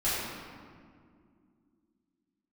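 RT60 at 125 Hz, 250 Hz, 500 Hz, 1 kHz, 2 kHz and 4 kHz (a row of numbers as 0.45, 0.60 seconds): 2.7, 3.5, 2.5, 1.9, 1.6, 1.2 seconds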